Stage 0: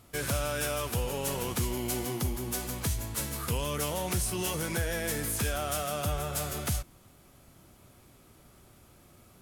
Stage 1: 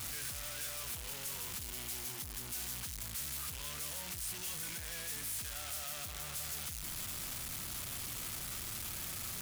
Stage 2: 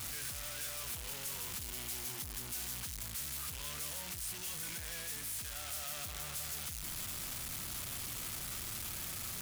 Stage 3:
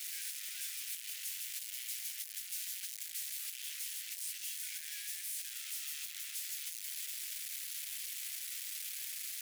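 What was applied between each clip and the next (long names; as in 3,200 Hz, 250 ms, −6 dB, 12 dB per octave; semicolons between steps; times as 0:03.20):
sign of each sample alone; guitar amp tone stack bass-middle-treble 5-5-5; level +1 dB
speech leveller
Butterworth high-pass 1,800 Hz 36 dB per octave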